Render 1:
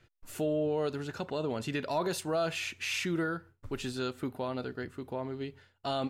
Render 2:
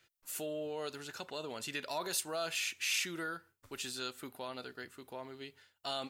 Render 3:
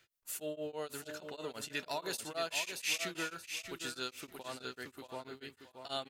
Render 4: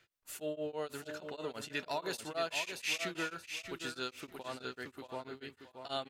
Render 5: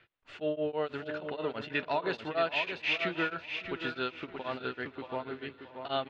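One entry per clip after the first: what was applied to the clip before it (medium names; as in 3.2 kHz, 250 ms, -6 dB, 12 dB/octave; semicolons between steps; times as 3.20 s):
tilt EQ +3.5 dB/octave; trim -5.5 dB
feedback delay 627 ms, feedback 26%, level -7.5 dB; tremolo of two beating tones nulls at 6.2 Hz; trim +1.5 dB
treble shelf 5.1 kHz -9 dB; trim +2 dB
low-pass 3.3 kHz 24 dB/octave; shuffle delay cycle 936 ms, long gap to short 1.5:1, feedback 33%, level -20.5 dB; trim +6.5 dB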